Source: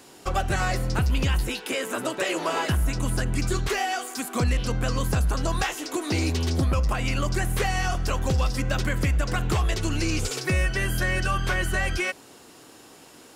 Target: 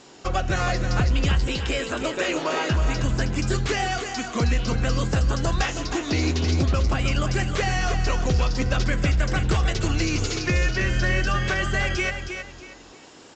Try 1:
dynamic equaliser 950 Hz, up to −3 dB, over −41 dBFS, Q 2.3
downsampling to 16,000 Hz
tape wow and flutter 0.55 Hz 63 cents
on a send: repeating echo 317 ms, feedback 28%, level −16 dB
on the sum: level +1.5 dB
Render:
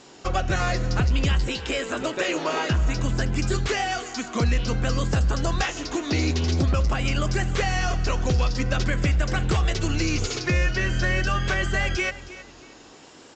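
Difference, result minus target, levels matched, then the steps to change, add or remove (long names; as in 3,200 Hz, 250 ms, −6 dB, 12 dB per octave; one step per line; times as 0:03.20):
echo-to-direct −8.5 dB
change: repeating echo 317 ms, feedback 28%, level −7.5 dB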